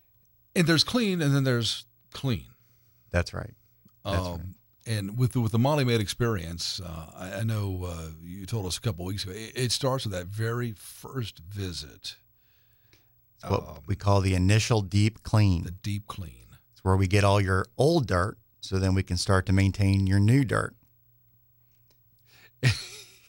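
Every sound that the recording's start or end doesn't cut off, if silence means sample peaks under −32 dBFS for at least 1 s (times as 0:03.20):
0:13.45–0:20.69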